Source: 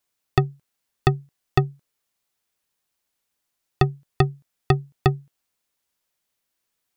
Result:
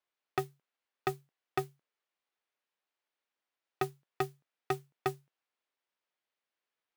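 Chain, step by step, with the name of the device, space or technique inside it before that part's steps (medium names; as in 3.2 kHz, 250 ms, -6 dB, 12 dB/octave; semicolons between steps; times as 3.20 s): carbon microphone (band-pass 340–3100 Hz; saturation -16.5 dBFS, distortion -11 dB; modulation noise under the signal 18 dB); trim -5.5 dB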